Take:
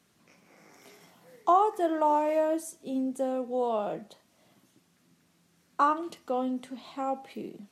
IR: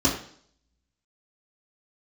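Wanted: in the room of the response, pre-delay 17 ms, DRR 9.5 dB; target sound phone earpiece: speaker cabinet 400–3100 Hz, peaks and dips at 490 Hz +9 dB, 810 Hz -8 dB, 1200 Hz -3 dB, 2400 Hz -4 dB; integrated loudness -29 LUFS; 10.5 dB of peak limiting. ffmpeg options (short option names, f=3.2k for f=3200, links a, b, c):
-filter_complex "[0:a]alimiter=limit=-21.5dB:level=0:latency=1,asplit=2[a][b];[1:a]atrim=start_sample=2205,adelay=17[c];[b][c]afir=irnorm=-1:irlink=0,volume=-23.5dB[d];[a][d]amix=inputs=2:normalize=0,highpass=400,equalizer=f=490:t=q:w=4:g=9,equalizer=f=810:t=q:w=4:g=-8,equalizer=f=1.2k:t=q:w=4:g=-3,equalizer=f=2.4k:t=q:w=4:g=-4,lowpass=f=3.1k:w=0.5412,lowpass=f=3.1k:w=1.3066,volume=2dB"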